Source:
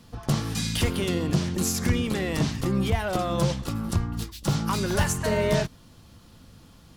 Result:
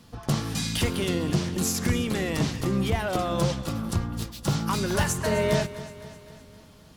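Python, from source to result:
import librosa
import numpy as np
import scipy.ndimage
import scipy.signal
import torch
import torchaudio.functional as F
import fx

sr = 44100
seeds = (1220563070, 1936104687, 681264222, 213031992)

y = fx.low_shelf(x, sr, hz=76.0, db=-5.0)
y = fx.echo_feedback(y, sr, ms=258, feedback_pct=55, wet_db=-15.5)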